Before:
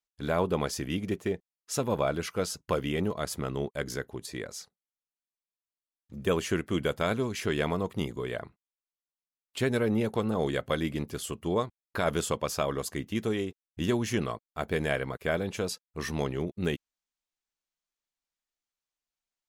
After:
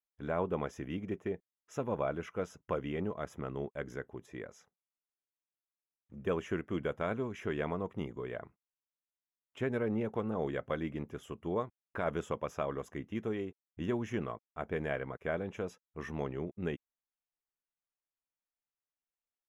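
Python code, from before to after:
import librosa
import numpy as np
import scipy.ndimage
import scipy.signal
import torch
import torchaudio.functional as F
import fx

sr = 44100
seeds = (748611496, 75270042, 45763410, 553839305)

y = scipy.signal.lfilter(np.full(10, 1.0 / 10), 1.0, x)
y = fx.low_shelf(y, sr, hz=190.0, db=-3.5)
y = F.gain(torch.from_numpy(y), -5.0).numpy()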